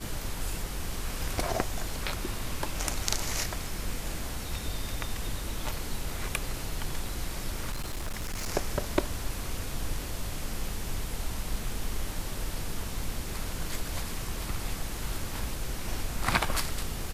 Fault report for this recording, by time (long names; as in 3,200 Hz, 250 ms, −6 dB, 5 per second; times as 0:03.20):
0:07.72–0:08.48: clipping −29.5 dBFS